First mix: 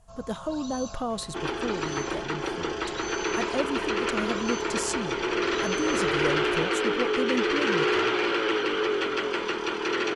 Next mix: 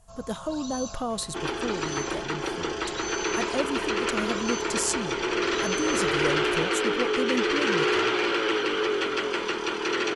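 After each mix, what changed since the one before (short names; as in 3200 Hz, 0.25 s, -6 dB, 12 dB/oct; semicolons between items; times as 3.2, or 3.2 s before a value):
master: add high shelf 6200 Hz +8 dB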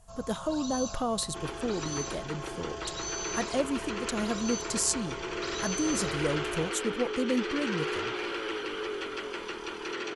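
second sound -9.0 dB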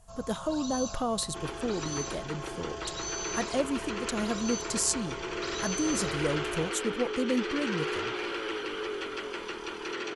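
none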